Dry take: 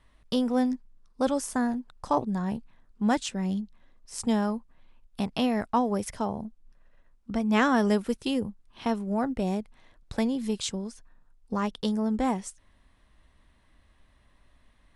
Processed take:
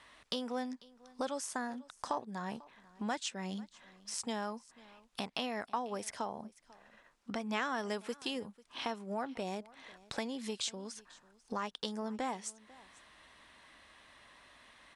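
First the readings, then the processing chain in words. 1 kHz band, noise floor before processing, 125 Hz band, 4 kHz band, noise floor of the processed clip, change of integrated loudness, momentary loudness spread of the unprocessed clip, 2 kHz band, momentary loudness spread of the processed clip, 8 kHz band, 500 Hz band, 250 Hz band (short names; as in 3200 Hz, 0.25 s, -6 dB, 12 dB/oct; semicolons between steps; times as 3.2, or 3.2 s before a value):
-8.0 dB, -63 dBFS, -14.5 dB, -3.0 dB, -69 dBFS, -11.0 dB, 12 LU, -6.5 dB, 21 LU, -4.0 dB, -10.0 dB, -15.0 dB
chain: HPF 910 Hz 6 dB/oct; compressor 2.5:1, threshold -54 dBFS, peak gain reduction 20.5 dB; LPF 8800 Hz 12 dB/oct; on a send: echo 0.494 s -22 dB; on the sum: gain +11.5 dB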